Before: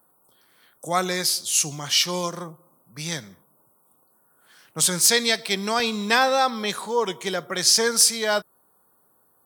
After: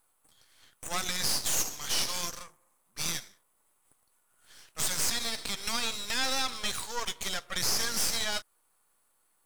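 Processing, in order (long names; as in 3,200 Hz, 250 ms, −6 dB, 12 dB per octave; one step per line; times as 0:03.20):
meter weighting curve ITU-R 468
brickwall limiter −10.5 dBFS, peak gain reduction 17 dB
half-wave rectification
level −4.5 dB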